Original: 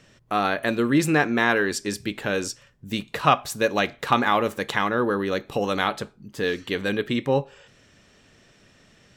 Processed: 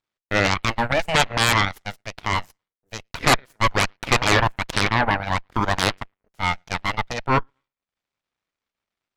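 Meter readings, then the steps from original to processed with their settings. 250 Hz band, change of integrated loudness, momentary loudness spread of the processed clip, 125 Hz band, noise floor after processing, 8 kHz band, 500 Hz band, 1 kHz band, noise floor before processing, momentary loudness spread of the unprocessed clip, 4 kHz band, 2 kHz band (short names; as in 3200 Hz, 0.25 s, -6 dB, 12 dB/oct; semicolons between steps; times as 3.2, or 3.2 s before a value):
-4.0 dB, +2.0 dB, 13 LU, +5.5 dB, under -85 dBFS, +5.5 dB, -2.5 dB, +2.5 dB, -57 dBFS, 10 LU, +6.5 dB, +3.0 dB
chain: graphic EQ 125/250/500/1000/2000 Hz -12/+3/+7/+7/+6 dB; on a send: analogue delay 0.113 s, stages 2048, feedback 37%, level -19.5 dB; on the sum: transient shaper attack -3 dB, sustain -7 dB; added harmonics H 3 -19 dB, 5 -45 dB, 7 -20 dB, 8 -8 dB, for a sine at 2 dBFS; gain -6.5 dB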